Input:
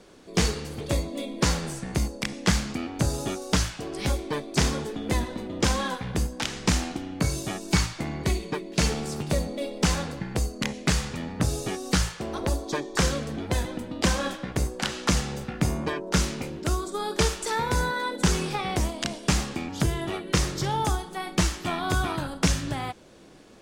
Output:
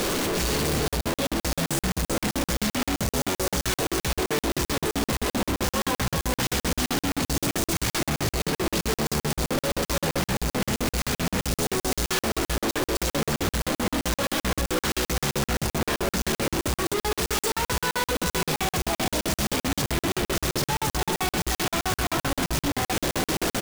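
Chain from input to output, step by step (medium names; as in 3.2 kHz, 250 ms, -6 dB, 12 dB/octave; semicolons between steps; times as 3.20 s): one-bit comparator; delay 356 ms -5.5 dB; crackling interface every 0.13 s, samples 2048, zero, from 0.88 s; trim +1.5 dB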